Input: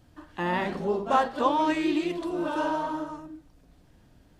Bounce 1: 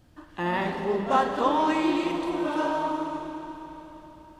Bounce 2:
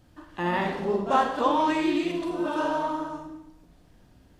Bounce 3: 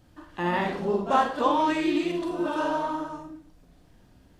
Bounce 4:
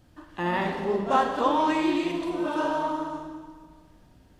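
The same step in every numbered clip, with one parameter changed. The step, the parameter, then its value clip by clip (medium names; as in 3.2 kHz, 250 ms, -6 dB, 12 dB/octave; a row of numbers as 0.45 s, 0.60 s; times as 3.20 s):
Schroeder reverb, RT60: 4.1 s, 0.83 s, 0.38 s, 1.7 s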